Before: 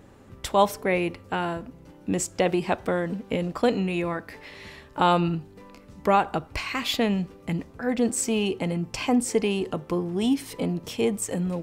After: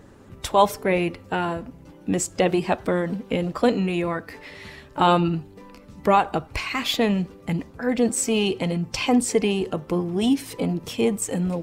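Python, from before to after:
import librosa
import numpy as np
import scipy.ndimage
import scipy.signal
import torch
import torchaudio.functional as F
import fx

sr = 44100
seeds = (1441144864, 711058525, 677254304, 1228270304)

y = fx.spec_quant(x, sr, step_db=15)
y = fx.dynamic_eq(y, sr, hz=4000.0, q=1.2, threshold_db=-49.0, ratio=4.0, max_db=5, at=(8.34, 9.32))
y = F.gain(torch.from_numpy(y), 3.0).numpy()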